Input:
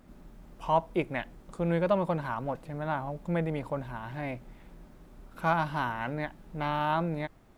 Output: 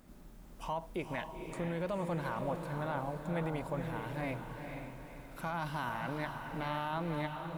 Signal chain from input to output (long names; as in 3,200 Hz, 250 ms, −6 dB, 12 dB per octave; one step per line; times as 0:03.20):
high-shelf EQ 4,500 Hz +9 dB
brickwall limiter −24.5 dBFS, peak gain reduction 11 dB
on a send: feedback delay with all-pass diffusion 481 ms, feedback 45%, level −5.5 dB
on the sum: level −3.5 dB